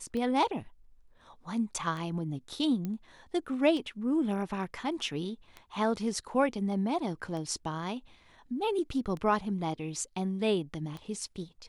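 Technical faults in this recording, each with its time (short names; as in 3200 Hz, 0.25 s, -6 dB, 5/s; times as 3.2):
tick 33 1/3 rpm -27 dBFS
2.85 pop -23 dBFS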